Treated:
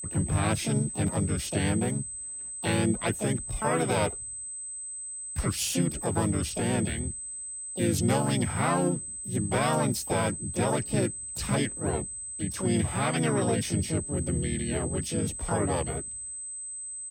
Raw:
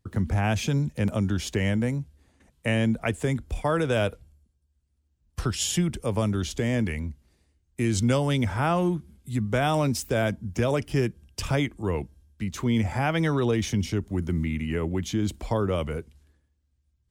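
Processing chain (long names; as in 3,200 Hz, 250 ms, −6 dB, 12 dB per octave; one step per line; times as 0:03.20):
pitch-shifted copies added −3 semitones −3 dB, +7 semitones −2 dB, +12 semitones −17 dB
steady tone 8,200 Hz −30 dBFS
level −5.5 dB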